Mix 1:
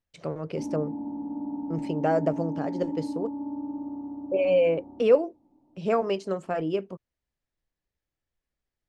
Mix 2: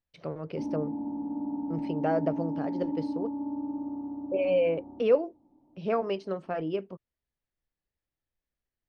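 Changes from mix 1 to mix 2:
speech −3.5 dB
master: add Savitzky-Golay smoothing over 15 samples

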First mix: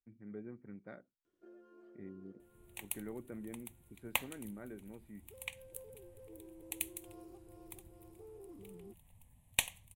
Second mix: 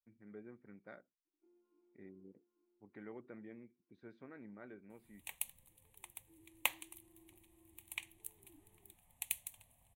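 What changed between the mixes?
first sound: add formant filter u
second sound: entry +2.50 s
master: add low-shelf EQ 370 Hz −10 dB

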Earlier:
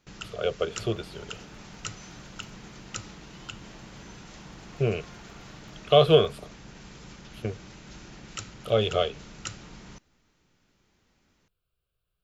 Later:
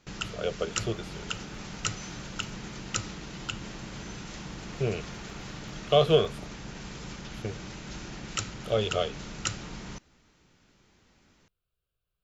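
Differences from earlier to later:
speech −3.5 dB
first sound +5.5 dB

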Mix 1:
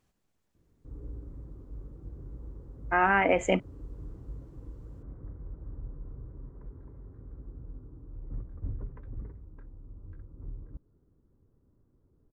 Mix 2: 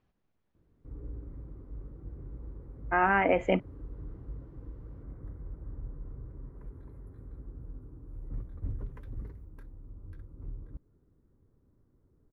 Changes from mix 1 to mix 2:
speech: add high-frequency loss of the air 240 metres
background: remove low-pass filter 1,600 Hz 12 dB per octave

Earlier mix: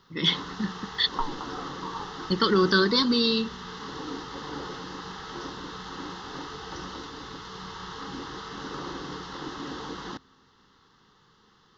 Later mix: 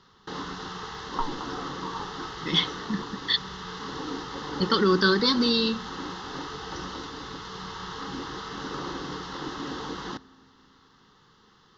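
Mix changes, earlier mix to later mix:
speech: entry +2.30 s
first sound: send +10.5 dB

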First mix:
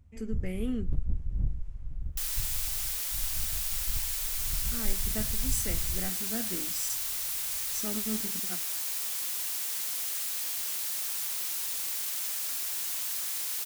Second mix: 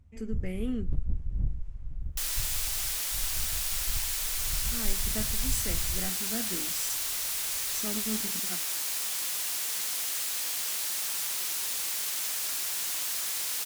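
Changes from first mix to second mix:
second sound +4.5 dB
master: add high-shelf EQ 12,000 Hz −6.5 dB

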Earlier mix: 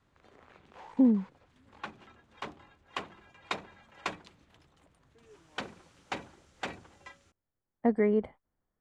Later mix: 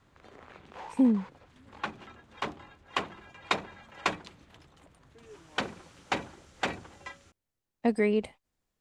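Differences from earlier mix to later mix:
speech: remove Savitzky-Golay smoothing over 41 samples
background +6.5 dB

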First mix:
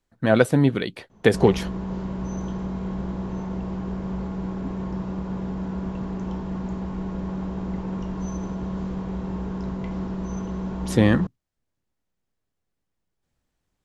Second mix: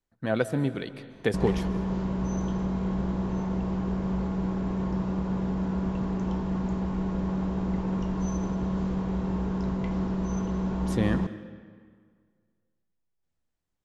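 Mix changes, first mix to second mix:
speech −11.0 dB
reverb: on, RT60 1.9 s

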